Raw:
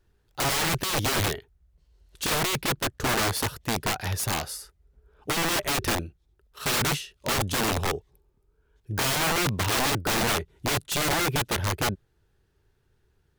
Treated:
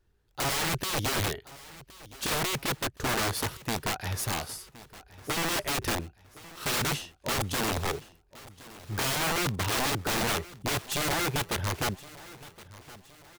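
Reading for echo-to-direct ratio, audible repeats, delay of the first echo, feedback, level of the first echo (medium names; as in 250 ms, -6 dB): -18.0 dB, 3, 1068 ms, 45%, -19.0 dB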